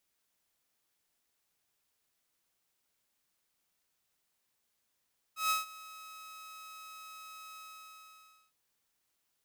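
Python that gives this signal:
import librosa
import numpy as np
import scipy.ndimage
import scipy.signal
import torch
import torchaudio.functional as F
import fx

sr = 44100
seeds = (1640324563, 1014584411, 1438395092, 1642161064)

y = fx.adsr_tone(sr, wave='saw', hz=1280.0, attack_ms=140.0, decay_ms=151.0, sustain_db=-20.5, held_s=2.21, release_ms=953.0, level_db=-24.0)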